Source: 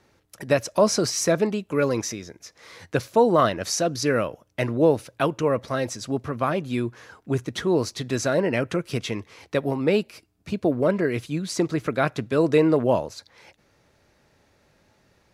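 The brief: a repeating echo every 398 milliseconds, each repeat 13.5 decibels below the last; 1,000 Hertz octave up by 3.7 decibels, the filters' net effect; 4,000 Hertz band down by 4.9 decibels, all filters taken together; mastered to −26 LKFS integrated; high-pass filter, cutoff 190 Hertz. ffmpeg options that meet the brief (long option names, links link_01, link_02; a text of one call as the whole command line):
ffmpeg -i in.wav -af "highpass=190,equalizer=frequency=1000:width_type=o:gain=5,equalizer=frequency=4000:width_type=o:gain=-7,aecho=1:1:398|796:0.211|0.0444,volume=-2.5dB" out.wav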